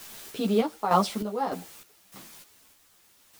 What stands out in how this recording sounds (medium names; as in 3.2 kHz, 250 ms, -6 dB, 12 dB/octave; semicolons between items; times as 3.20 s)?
a quantiser's noise floor 8-bit, dither triangular; random-step tremolo 3.3 Hz, depth 85%; a shimmering, thickened sound